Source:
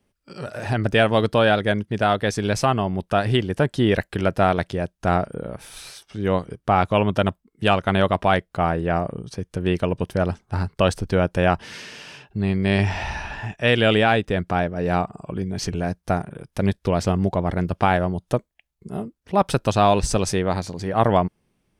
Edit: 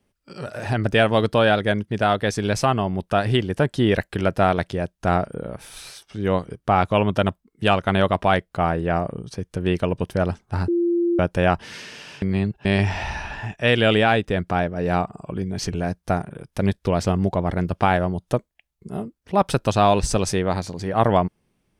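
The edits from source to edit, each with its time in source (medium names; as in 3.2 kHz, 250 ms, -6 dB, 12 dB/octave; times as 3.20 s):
10.68–11.19 s: bleep 344 Hz -17 dBFS
12.22–12.65 s: reverse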